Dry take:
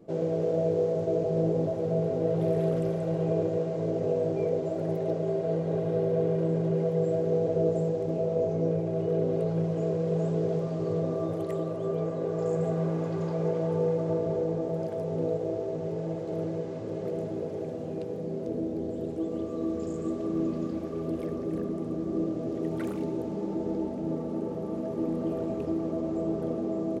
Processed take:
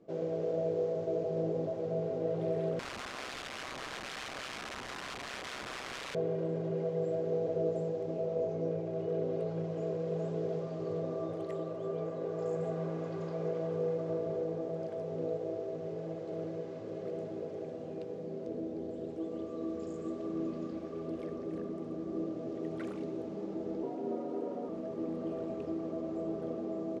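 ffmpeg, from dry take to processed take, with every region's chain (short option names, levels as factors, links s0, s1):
-filter_complex "[0:a]asettb=1/sr,asplit=3[s0][s1][s2];[s0]atrim=end=2.794[s3];[s1]atrim=start=2.79:end=6.15,asetpts=PTS-STARTPTS,afade=t=in:d=0.004:c=qsin,afade=t=out:st=3.356:d=0.004:c=qsin,aeval=exprs='(mod(26.6*val(0)+1,2)-1)/26.6':c=same,aeval=exprs='val(0)*sin(2*PI*65*n/s)':c=same[s4];[s2]atrim=start=6.146[s5];[s3][s4]acrossfade=d=0.004:c1=hsin:c2=qsin[s6];[s6][s5]acrossfade=d=0.004:c1=qsin:c2=hsin,asettb=1/sr,asplit=3[s7][s8][s9];[s7]atrim=end=23.834[s10];[s8]atrim=start=23.83:end=24.69,asetpts=PTS-STARTPTS,afade=t=in:d=0.004:c=qsin,afade=t=out:st=0.856:d=0.004:c=qsin,lowshelf=f=190:g=5.5,afreqshift=73[s11];[s9]atrim=start=24.686[s12];[s10][s11]acrossfade=d=0.004:c1=hsin:c2=qsin[s13];[s13][s12]acrossfade=d=0.004:c1=qsin:c2=hsin,lowpass=6400,lowshelf=f=210:g=-8.5,bandreject=f=880:w=16,volume=0.596"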